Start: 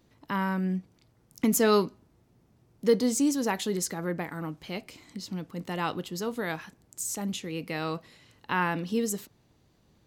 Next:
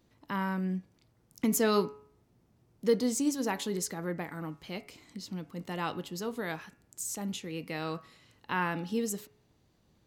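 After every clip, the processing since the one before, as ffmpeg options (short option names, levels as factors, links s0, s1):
-af "bandreject=f=140.8:t=h:w=4,bandreject=f=281.6:t=h:w=4,bandreject=f=422.4:t=h:w=4,bandreject=f=563.2:t=h:w=4,bandreject=f=704:t=h:w=4,bandreject=f=844.8:t=h:w=4,bandreject=f=985.6:t=h:w=4,bandreject=f=1126.4:t=h:w=4,bandreject=f=1267.2:t=h:w=4,bandreject=f=1408:t=h:w=4,bandreject=f=1548.8:t=h:w=4,bandreject=f=1689.6:t=h:w=4,bandreject=f=1830.4:t=h:w=4,bandreject=f=1971.2:t=h:w=4,bandreject=f=2112:t=h:w=4,bandreject=f=2252.8:t=h:w=4,bandreject=f=2393.6:t=h:w=4,bandreject=f=2534.4:t=h:w=4,bandreject=f=2675.2:t=h:w=4,bandreject=f=2816:t=h:w=4,volume=0.668"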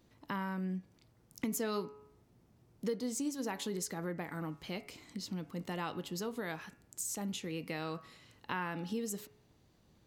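-af "acompressor=threshold=0.0141:ratio=3,volume=1.12"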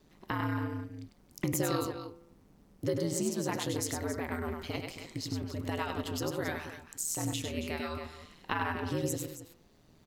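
-af "aecho=1:1:99.13|274.1:0.562|0.282,aeval=exprs='val(0)*sin(2*PI*80*n/s)':c=same,volume=2.11"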